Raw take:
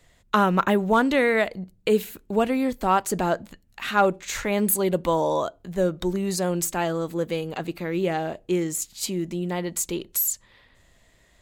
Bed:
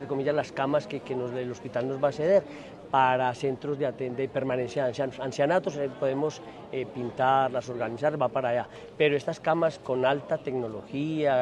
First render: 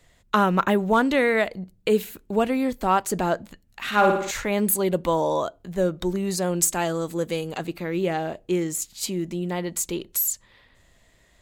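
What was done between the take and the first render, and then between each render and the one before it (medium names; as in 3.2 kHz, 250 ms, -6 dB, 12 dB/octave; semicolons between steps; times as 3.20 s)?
3.86–4.31 s: flutter echo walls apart 9.8 m, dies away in 0.71 s; 6.61–7.66 s: peaking EQ 8.3 kHz +7.5 dB 1.4 oct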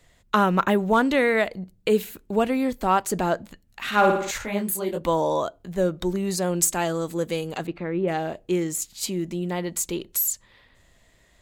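4.38–5.02 s: detune thickener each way 47 cents; 7.66–8.07 s: low-pass 3 kHz -> 1.4 kHz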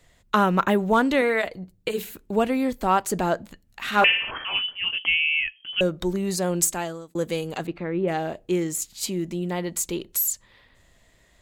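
1.21–1.99 s: comb of notches 210 Hz; 4.04–5.81 s: frequency inversion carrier 3.2 kHz; 6.61–7.15 s: fade out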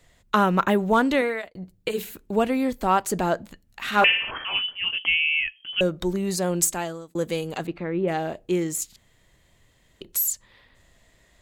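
1.15–1.55 s: fade out; 8.96–10.01 s: room tone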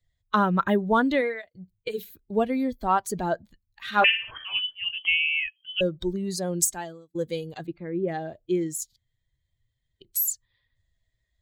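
expander on every frequency bin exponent 1.5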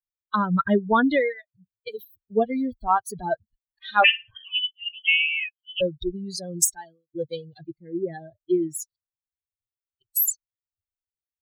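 expander on every frequency bin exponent 2; level rider gain up to 5 dB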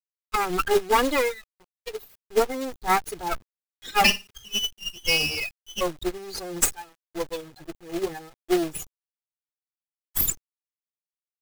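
comb filter that takes the minimum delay 2.4 ms; companded quantiser 4-bit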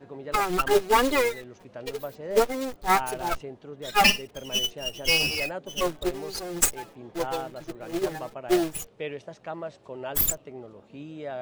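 add bed -11 dB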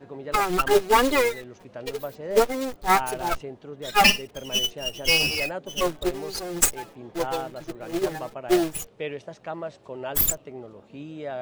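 trim +2 dB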